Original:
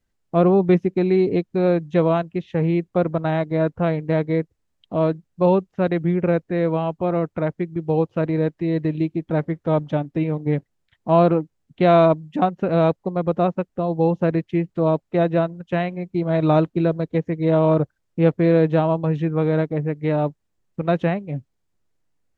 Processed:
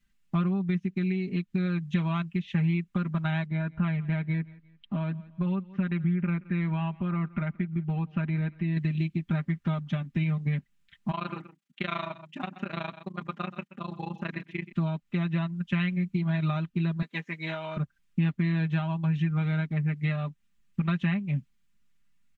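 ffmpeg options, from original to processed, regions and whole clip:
-filter_complex "[0:a]asettb=1/sr,asplit=3[a][b][c];[a]atrim=end=3.464[d];[b]atrim=start=3.46:end=8.77,asetpts=PTS-STARTPTS,afade=t=in:d=0.004:c=qsin,afade=t=out:st=5.306:d=0.004:c=qsin,lowpass=2.9k,acompressor=threshold=-28dB:ratio=1.5:attack=3.2:release=140:knee=1:detection=peak,aecho=1:1:174|348:0.0631|0.0246,atrim=end_sample=234171[e];[c]atrim=start=8.766[f];[d][e]acrossfade=d=0.004:c1=hsin:c2=qsin[g];[g][f]acrossfade=d=0.004:c1=qsin:c2=hsin,asettb=1/sr,asplit=3[h][i][j];[h]atrim=end=11.114[k];[i]atrim=start=11.11:end=14.72,asetpts=PTS-STARTPTS,afade=t=in:d=0.004:c=qsin,afade=t=out:st=3.606:d=0.004:c=qsin,highpass=340,tremolo=f=27:d=1,aecho=1:1:127:0.15,atrim=end_sample=159201[l];[j]atrim=start=14.716[m];[k][l]acrossfade=d=0.004:c1=hsin:c2=qsin[n];[n][m]acrossfade=d=0.004:c1=qsin:c2=hsin,asettb=1/sr,asplit=3[o][p][q];[o]atrim=end=17.024[r];[p]atrim=start=17.02:end=17.77,asetpts=PTS-STARTPTS,afade=t=in:d=0.004:c=qsin,afade=t=out:st=0.746:d=0.004:c=qsin,highpass=480,asplit=2[s][t];[t]adelay=13,volume=-11dB[u];[s][u]amix=inputs=2:normalize=0,atrim=end_sample=33075[v];[q]atrim=start=17.766[w];[r][v]acrossfade=d=0.004:c1=hsin:c2=qsin[x];[x][w]acrossfade=d=0.004:c1=qsin:c2=hsin,aecho=1:1:5:0.86,acompressor=threshold=-22dB:ratio=6,firequalizer=gain_entry='entry(240,0);entry(440,-19);entry(1200,-1);entry(2600,5);entry(4700,-1)':delay=0.05:min_phase=1"

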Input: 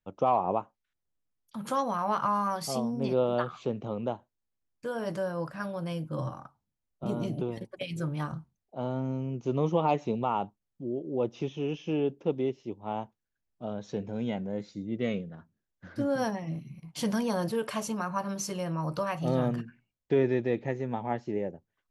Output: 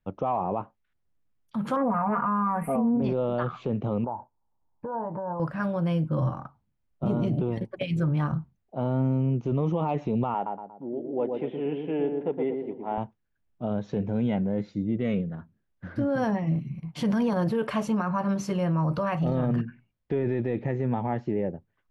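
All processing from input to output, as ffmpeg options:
-filter_complex "[0:a]asettb=1/sr,asplit=3[a][b][c];[a]atrim=end=1.764[d];[b]atrim=start=1.76:end=3.02,asetpts=PTS-STARTPTS,afade=t=in:d=0.004:c=qsin,afade=t=out:st=1.256:d=0.004:c=qsin,asuperstop=centerf=4900:order=12:qfactor=0.76,equalizer=f=4.9k:w=1.3:g=9,aecho=1:1:4.2:0.78,atrim=end_sample=55566[e];[c]atrim=start=3.016[f];[d][e]acrossfade=d=0.004:c1=hsin:c2=qsin[g];[g][f]acrossfade=d=0.004:c1=qsin:c2=hsin,asettb=1/sr,asplit=3[h][i][j];[h]atrim=end=4.044[k];[i]atrim=start=4.04:end=5.4,asetpts=PTS-STARTPTS,afade=t=in:d=0.004:c=qsin,afade=t=out:st=1.356:d=0.004:c=qsin,acompressor=threshold=-39dB:ratio=16:attack=3.2:release=140:knee=1:detection=peak,lowpass=f=900:t=q:w=9.8[l];[j]atrim=start=5.396[m];[k][l]acrossfade=d=0.004:c1=hsin:c2=qsin[n];[n][m]acrossfade=d=0.004:c1=qsin:c2=hsin,asettb=1/sr,asplit=3[o][p][q];[o]atrim=end=10.344[r];[p]atrim=start=10.34:end=12.98,asetpts=PTS-STARTPTS,afade=t=in:d=0.004:c=qsin,afade=t=out:st=2.636:d=0.004:c=qsin,highpass=350,equalizer=f=360:t=q:w=4:g=-5,equalizer=f=530:t=q:w=4:g=-3,equalizer=f=1.2k:t=q:w=4:g=-9,equalizer=f=1.8k:t=q:w=4:g=7,equalizer=f=2.6k:t=q:w=4:g=-7,lowpass=f=2.9k:w=0.5412,lowpass=f=2.9k:w=1.3066,bandreject=f=1.8k:w=22,asplit=2[s][t];[t]adelay=117,lowpass=f=1.2k:p=1,volume=-4dB,asplit=2[u][v];[v]adelay=117,lowpass=f=1.2k:p=1,volume=0.48,asplit=2[w][x];[x]adelay=117,lowpass=f=1.2k:p=1,volume=0.48,asplit=2[y][z];[z]adelay=117,lowpass=f=1.2k:p=1,volume=0.48,asplit=2[aa][ab];[ab]adelay=117,lowpass=f=1.2k:p=1,volume=0.48,asplit=2[ac][ad];[ad]adelay=117,lowpass=f=1.2k:p=1,volume=0.48[ae];[s][u][w][y][aa][ac][ae]amix=inputs=7:normalize=0,atrim=end_sample=116424[af];[q]atrim=start=12.976[ag];[r][af]acrossfade=d=0.004:c1=hsin:c2=qsin[ah];[ah][ag]acrossfade=d=0.004:c1=qsin:c2=hsin,bass=f=250:g=5,treble=f=4k:g=-15,alimiter=limit=-24dB:level=0:latency=1:release=15,volume=5.5dB"

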